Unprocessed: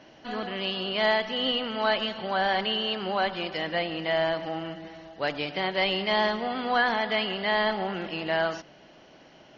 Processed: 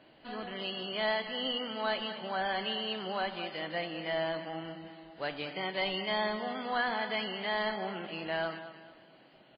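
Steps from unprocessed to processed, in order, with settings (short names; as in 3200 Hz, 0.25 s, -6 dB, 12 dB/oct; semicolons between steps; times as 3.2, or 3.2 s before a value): feedback echo 0.216 s, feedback 37%, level -12.5 dB; gain -7 dB; MP3 16 kbps 11025 Hz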